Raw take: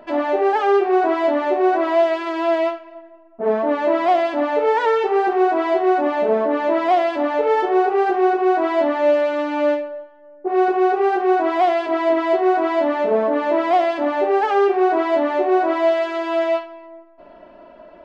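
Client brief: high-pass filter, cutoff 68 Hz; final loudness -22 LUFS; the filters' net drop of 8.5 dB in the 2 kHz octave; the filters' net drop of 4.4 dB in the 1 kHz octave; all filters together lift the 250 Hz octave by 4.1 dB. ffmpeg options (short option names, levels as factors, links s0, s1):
-af "highpass=68,equalizer=f=250:t=o:g=7.5,equalizer=f=1000:t=o:g=-6,equalizer=f=2000:t=o:g=-9,volume=0.668"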